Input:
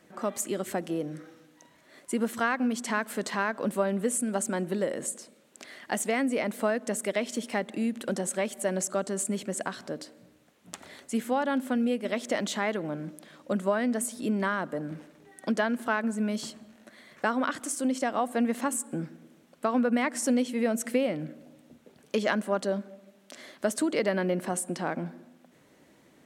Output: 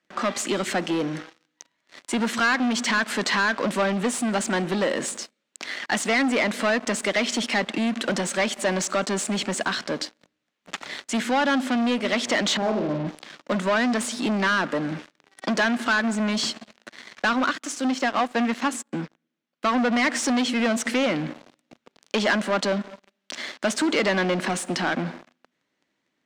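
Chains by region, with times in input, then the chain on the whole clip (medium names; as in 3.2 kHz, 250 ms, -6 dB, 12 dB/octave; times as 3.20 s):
12.57–13.07 s: Chebyshev low-pass 670 Hz, order 3 + flutter echo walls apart 7.9 m, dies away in 0.51 s
17.33–19.66 s: peaking EQ 8.6 kHz -7 dB 0.21 oct + upward expansion, over -38 dBFS
whole clip: peaking EQ 490 Hz -10 dB 2.2 oct; waveshaping leveller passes 5; three-band isolator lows -13 dB, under 220 Hz, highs -22 dB, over 6.5 kHz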